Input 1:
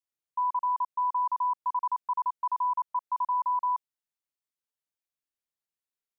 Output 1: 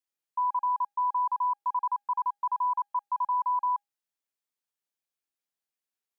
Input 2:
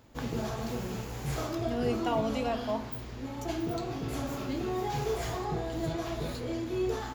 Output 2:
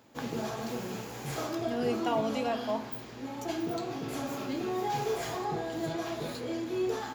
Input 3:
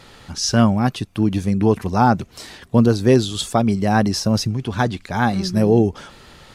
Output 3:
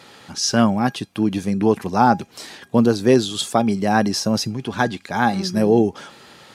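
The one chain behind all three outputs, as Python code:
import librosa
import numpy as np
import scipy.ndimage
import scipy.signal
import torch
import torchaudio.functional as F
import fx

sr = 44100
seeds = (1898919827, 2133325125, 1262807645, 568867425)

y = scipy.signal.sosfilt(scipy.signal.butter(2, 170.0, 'highpass', fs=sr, output='sos'), x)
y = fx.comb_fb(y, sr, f0_hz=810.0, decay_s=0.21, harmonics='all', damping=0.0, mix_pct=60)
y = y * librosa.db_to_amplitude(8.0)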